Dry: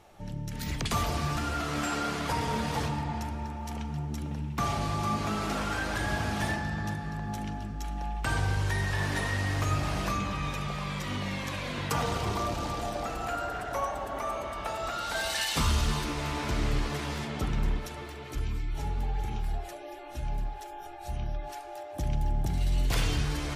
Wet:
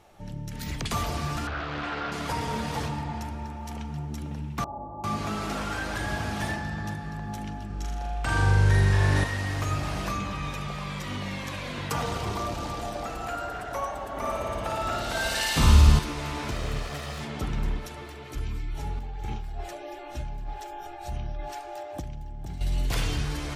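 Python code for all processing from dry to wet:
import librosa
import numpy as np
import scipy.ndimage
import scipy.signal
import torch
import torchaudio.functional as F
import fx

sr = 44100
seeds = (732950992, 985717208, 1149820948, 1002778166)

y = fx.chain(x, sr, fx.lowpass(hz=4000.0, slope=24),
    fx.peak_eq(hz=240.0, db=-6.0, octaves=0.77),
    fx.doppler_dist(depth_ms=0.48), at=(1.47, 2.12))
y = fx.chain(y, sr, fx.ellip_lowpass(hz=900.0, order=4, stop_db=70),
    fx.low_shelf(hz=440.0, db=-12.0),
    fx.comb(ms=3.5, depth=0.4), at=(4.64, 5.04))
y = fx.chain(y, sr, fx.lowpass(hz=11000.0, slope=12),
    fx.room_flutter(wall_m=7.0, rt60_s=0.77), at=(7.66, 9.24))
y = fx.chain(y, sr, fx.low_shelf(hz=380.0, db=7.0),
    fx.room_flutter(wall_m=9.5, rt60_s=1.1), at=(14.17, 15.99))
y = fx.chain(y, sr, fx.lower_of_two(delay_ms=1.6),
    fx.highpass(hz=40.0, slope=12), at=(16.51, 17.21))
y = fx.chain(y, sr, fx.peak_eq(hz=11000.0, db=-11.0, octaves=0.27),
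    fx.over_compress(threshold_db=-33.0, ratio=-1.0), at=(18.99, 22.61))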